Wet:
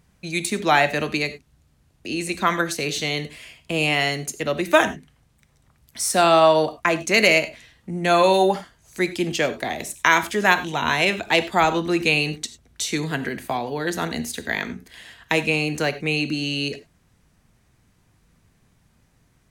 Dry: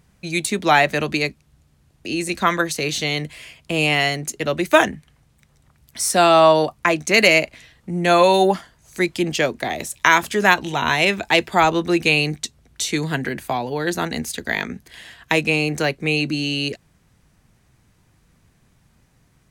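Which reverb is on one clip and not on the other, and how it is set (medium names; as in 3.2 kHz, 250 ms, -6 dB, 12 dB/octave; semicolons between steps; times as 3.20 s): gated-style reverb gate 120 ms flat, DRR 11.5 dB; trim -2.5 dB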